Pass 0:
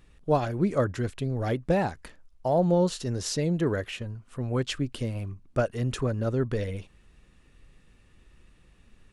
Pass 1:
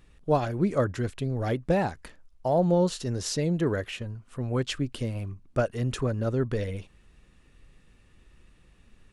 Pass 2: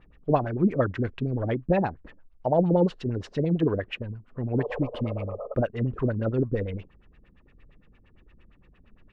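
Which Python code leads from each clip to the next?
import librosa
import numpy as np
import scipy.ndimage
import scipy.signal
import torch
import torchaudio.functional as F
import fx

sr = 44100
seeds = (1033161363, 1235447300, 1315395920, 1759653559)

y1 = x
y2 = fx.spec_repair(y1, sr, seeds[0], start_s=4.58, length_s=0.93, low_hz=420.0, high_hz=1300.0, source='both')
y2 = fx.filter_lfo_lowpass(y2, sr, shape='sine', hz=8.7, low_hz=230.0, high_hz=2900.0, q=1.9)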